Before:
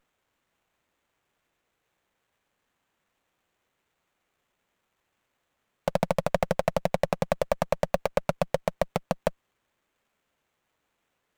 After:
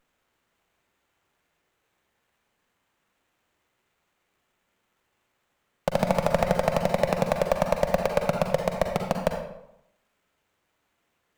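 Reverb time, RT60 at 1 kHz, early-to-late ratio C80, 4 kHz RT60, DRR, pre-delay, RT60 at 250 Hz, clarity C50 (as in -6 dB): 0.80 s, 0.80 s, 7.0 dB, 0.55 s, 3.0 dB, 39 ms, 0.80 s, 4.0 dB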